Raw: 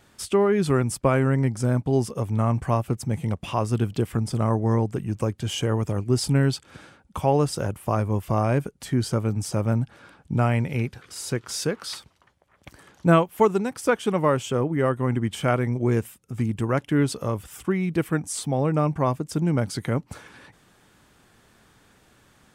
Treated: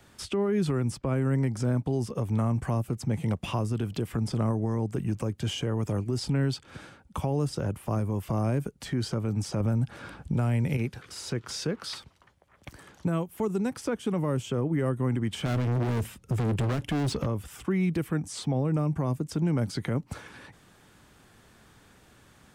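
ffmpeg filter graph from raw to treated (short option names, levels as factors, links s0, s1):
-filter_complex "[0:a]asettb=1/sr,asplit=3[s0][s1][s2];[s0]atrim=end=9.604[s3];[s1]atrim=start=9.6:end=10.77,asetpts=PTS-STARTPTS,afade=t=in:d=0.004:c=qsin,afade=t=out:st=1.166:d=0.004:c=qsin,lowshelf=f=150:g=8.5,acontrast=34[s4];[s2]atrim=start=10.766[s5];[s3][s4]acrossfade=d=0.004:c1=hsin:c2=qsin[s6];[s6][s5]acrossfade=d=0.004:c1=qsin:c2=hsin,asettb=1/sr,asplit=3[s7][s8][s9];[s7]atrim=end=15.454[s10];[s8]atrim=start=15.45:end=17.26,asetpts=PTS-STARTPTS,afade=t=in:d=0.004:c=qsin,afade=t=out:st=1.806:d=0.004:c=qsin,lowshelf=f=110:g=9.5,acontrast=81,volume=13.3,asoftclip=hard,volume=0.075[s11];[s9]atrim=start=17.256[s12];[s10][s11]acrossfade=d=0.004:c1=hsin:c2=qsin[s13];[s13][s12]acrossfade=d=0.004:c1=qsin:c2=hsin,acrossover=split=140|390|5900[s14][s15][s16][s17];[s14]acompressor=threshold=0.02:ratio=4[s18];[s15]acompressor=threshold=0.0501:ratio=4[s19];[s16]acompressor=threshold=0.0224:ratio=4[s20];[s17]acompressor=threshold=0.00316:ratio=4[s21];[s18][s19][s20][s21]amix=inputs=4:normalize=0,equalizer=f=67:t=o:w=2.9:g=2.5,alimiter=limit=0.112:level=0:latency=1:release=41"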